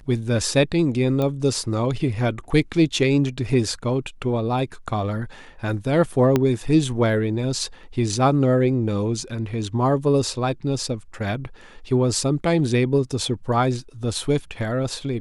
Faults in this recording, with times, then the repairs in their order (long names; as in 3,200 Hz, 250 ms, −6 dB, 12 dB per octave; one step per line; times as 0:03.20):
0:01.22: click −13 dBFS
0:06.36: click −6 dBFS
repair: click removal